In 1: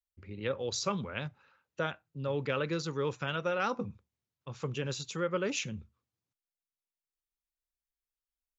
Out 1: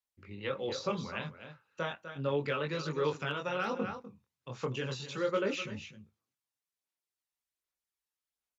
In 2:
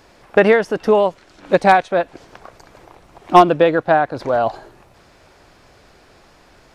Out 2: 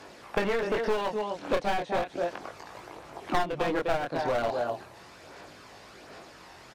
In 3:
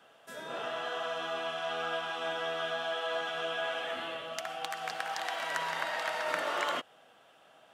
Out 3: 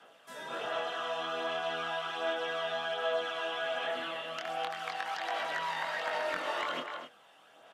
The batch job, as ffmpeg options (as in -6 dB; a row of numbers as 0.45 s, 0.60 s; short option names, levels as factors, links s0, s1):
-filter_complex "[0:a]flanger=delay=19.5:depth=5.3:speed=0.35,acrossover=split=4600[s0][s1];[s1]acompressor=threshold=0.00126:ratio=4:attack=1:release=60[s2];[s0][s2]amix=inputs=2:normalize=0,aresample=32000,aresample=44100,highpass=f=260:p=1,aecho=1:1:250:0.251,aphaser=in_gain=1:out_gain=1:delay=1.1:decay=0.32:speed=1.3:type=sinusoidal,aeval=exprs='clip(val(0),-1,0.0708)':c=same,acrossover=split=700|2400[s3][s4][s5];[s3]acompressor=threshold=0.0251:ratio=4[s6];[s4]acompressor=threshold=0.01:ratio=4[s7];[s5]acompressor=threshold=0.00562:ratio=4[s8];[s6][s7][s8]amix=inputs=3:normalize=0,volume=1.58"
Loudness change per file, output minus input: -0.5 LU, -14.5 LU, 0.0 LU